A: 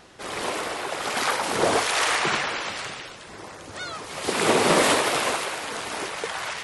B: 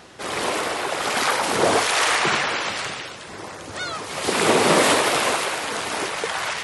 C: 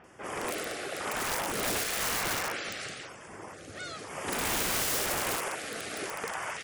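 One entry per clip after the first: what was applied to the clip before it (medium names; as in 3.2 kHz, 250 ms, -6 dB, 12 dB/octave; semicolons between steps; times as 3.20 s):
high-pass 56 Hz; in parallel at -2.5 dB: peak limiter -18.5 dBFS, peak gain reduction 9 dB
LFO notch square 0.99 Hz 960–4000 Hz; integer overflow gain 15.5 dB; bands offset in time lows, highs 40 ms, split 3.7 kHz; trim -8.5 dB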